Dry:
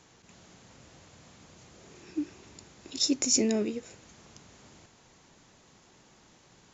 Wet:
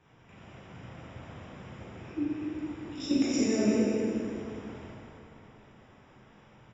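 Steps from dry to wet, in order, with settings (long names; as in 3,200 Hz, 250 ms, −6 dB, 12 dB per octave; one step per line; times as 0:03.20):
low-shelf EQ 140 Hz +3 dB
output level in coarse steps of 11 dB
Savitzky-Golay smoothing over 25 samples
on a send: single-tap delay 205 ms −8.5 dB
on the sum: dense smooth reverb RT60 2.8 s, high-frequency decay 0.7×, DRR −9 dB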